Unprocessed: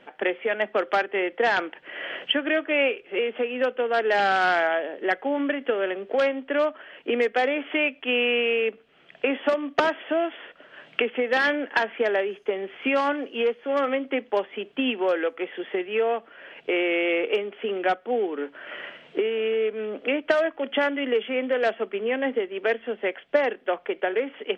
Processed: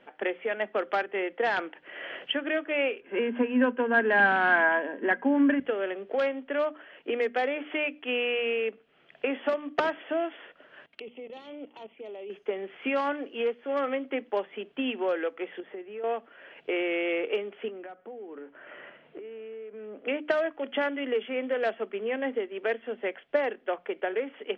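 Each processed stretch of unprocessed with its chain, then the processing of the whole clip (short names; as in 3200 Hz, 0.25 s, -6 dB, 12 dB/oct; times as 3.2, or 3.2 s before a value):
3.01–5.6 LPF 3300 Hz 24 dB/oct + small resonant body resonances 240/990/1600 Hz, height 17 dB, ringing for 60 ms
10.86–12.3 bell 660 Hz -2.5 dB 0.35 oct + level quantiser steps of 17 dB + envelope flanger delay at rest 4.6 ms, full sweep at -36 dBFS
15.6–16.04 compressor 2:1, threshold -36 dBFS + high shelf 2100 Hz -11.5 dB
17.68–20.07 compressor 16:1, threshold -32 dBFS + air absorption 390 m
whole clip: LPF 3700 Hz 6 dB/oct; notches 60/120/180/240/300 Hz; gain -4.5 dB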